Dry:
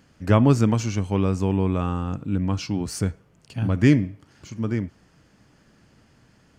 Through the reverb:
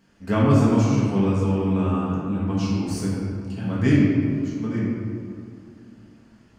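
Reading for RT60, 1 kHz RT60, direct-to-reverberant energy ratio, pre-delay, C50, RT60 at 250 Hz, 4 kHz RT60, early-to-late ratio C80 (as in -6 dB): 2.5 s, 2.3 s, -7.5 dB, 4 ms, -1.5 dB, 3.1 s, 1.3 s, 0.5 dB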